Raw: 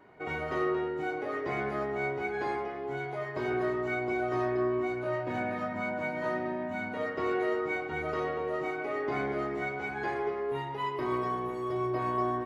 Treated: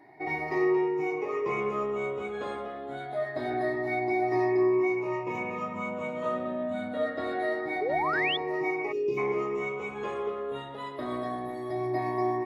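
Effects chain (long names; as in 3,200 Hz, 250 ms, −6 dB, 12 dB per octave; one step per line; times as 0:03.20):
rippled gain that drifts along the octave scale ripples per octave 0.77, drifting +0.25 Hz, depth 15 dB
gain on a spectral selection 0:08.92–0:09.18, 590–2,400 Hz −25 dB
notch comb filter 1,500 Hz
sound drawn into the spectrogram rise, 0:07.81–0:08.37, 390–3,600 Hz −29 dBFS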